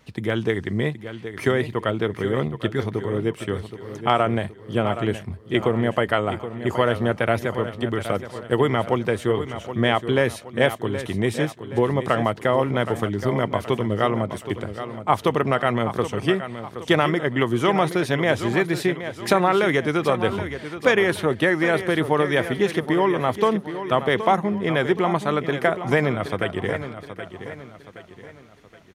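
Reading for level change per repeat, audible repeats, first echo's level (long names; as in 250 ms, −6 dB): −7.5 dB, 4, −11.0 dB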